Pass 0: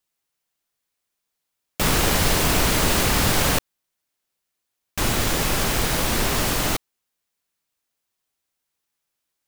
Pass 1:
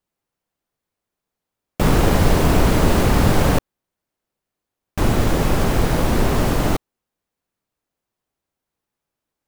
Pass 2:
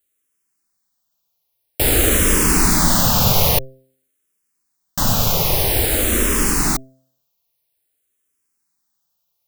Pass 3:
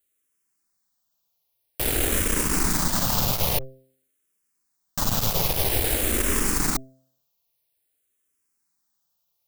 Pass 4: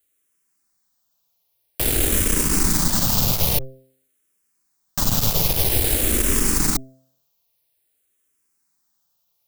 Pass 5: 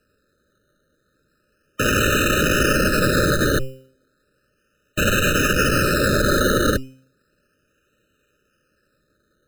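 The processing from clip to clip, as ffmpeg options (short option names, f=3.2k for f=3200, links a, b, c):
-af "tiltshelf=f=1.4k:g=7.5"
-filter_complex "[0:a]bandreject=f=131.6:t=h:w=4,bandreject=f=263.2:t=h:w=4,bandreject=f=394.8:t=h:w=4,bandreject=f=526.4:t=h:w=4,bandreject=f=658:t=h:w=4,crystalizer=i=5:c=0,asplit=2[a][b];[b]afreqshift=-0.5[c];[a][c]amix=inputs=2:normalize=1"
-af "alimiter=limit=-8.5dB:level=0:latency=1:release=32,aeval=exprs='clip(val(0),-1,0.0531)':c=same,volume=-2.5dB"
-filter_complex "[0:a]acrossover=split=390|3000[a][b][c];[b]acompressor=threshold=-35dB:ratio=6[d];[a][d][c]amix=inputs=3:normalize=0,volume=4.5dB"
-af "acrusher=samples=13:mix=1:aa=0.000001:lfo=1:lforange=7.8:lforate=0.34,aeval=exprs='(mod(5.96*val(0)+1,2)-1)/5.96':c=same,afftfilt=real='re*eq(mod(floor(b*sr/1024/610),2),0)':imag='im*eq(mod(floor(b*sr/1024/610),2),0)':win_size=1024:overlap=0.75,volume=5.5dB"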